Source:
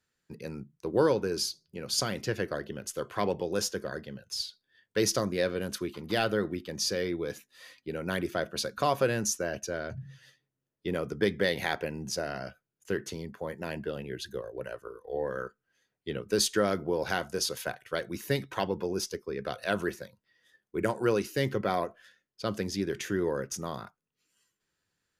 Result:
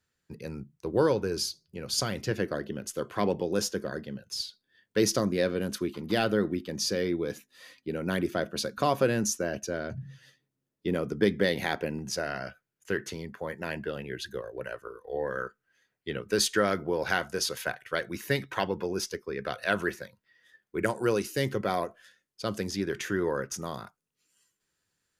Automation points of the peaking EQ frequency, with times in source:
peaking EQ +5.5 dB 1.3 oct
78 Hz
from 2.31 s 240 Hz
from 11.99 s 1.8 kHz
from 20.86 s 9 kHz
from 22.71 s 1.3 kHz
from 23.62 s 9.2 kHz

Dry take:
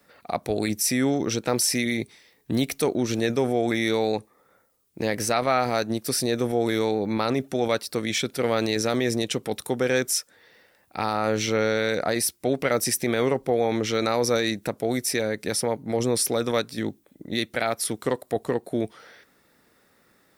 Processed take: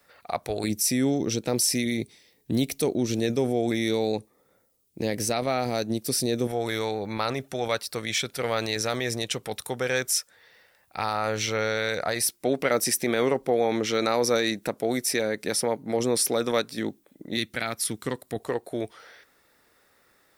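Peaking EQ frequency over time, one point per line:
peaking EQ -9 dB 1.6 oct
230 Hz
from 0.64 s 1.3 kHz
from 6.47 s 270 Hz
from 12.22 s 77 Hz
from 17.37 s 630 Hz
from 18.40 s 190 Hz

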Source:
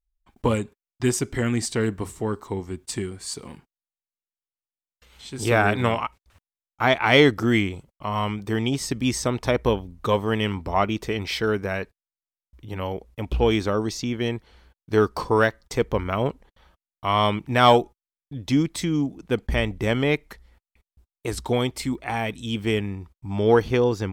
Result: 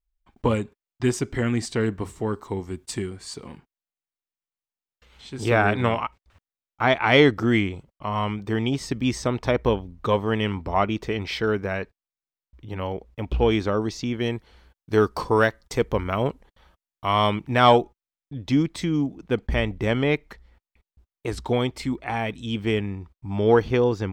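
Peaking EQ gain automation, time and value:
peaking EQ 12 kHz 1.4 oct
1.97 s -10 dB
2.76 s -0.5 dB
3.38 s -12 dB
13.92 s -12 dB
14.35 s -1 dB
17.17 s -1 dB
17.72 s -11.5 dB

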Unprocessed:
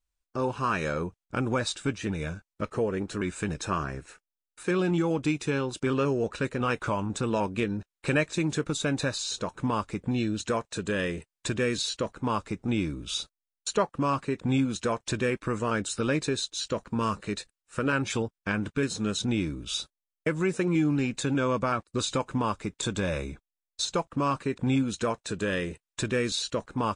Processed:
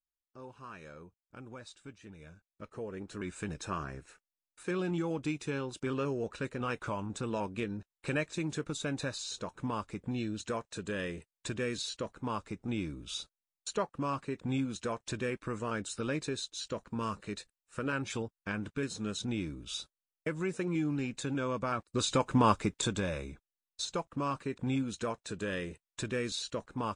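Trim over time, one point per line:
2.17 s -20 dB
3.36 s -7.5 dB
21.59 s -7.5 dB
22.52 s +4 dB
23.17 s -7 dB

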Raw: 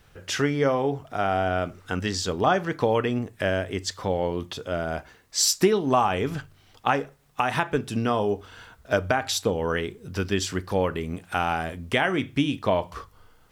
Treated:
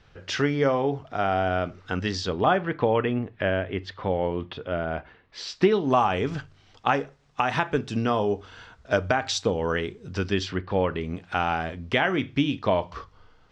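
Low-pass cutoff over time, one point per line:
low-pass 24 dB/octave
2.15 s 5.5 kHz
2.65 s 3.3 kHz
5.43 s 3.3 kHz
5.96 s 6.5 kHz
10.29 s 6.5 kHz
10.63 s 3.2 kHz
11.08 s 5.5 kHz

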